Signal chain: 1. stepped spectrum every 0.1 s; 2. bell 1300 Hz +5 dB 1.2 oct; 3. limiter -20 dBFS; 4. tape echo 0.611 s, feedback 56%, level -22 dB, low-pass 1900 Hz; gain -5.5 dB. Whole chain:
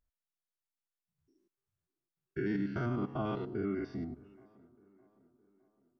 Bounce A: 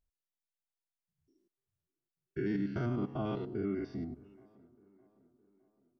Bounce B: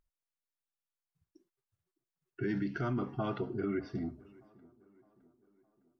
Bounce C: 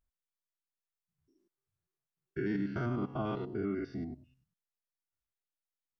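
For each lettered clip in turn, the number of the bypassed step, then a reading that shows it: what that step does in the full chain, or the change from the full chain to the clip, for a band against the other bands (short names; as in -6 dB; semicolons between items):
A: 2, 2 kHz band -3.0 dB; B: 1, momentary loudness spread change -4 LU; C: 4, echo-to-direct -37.5 dB to none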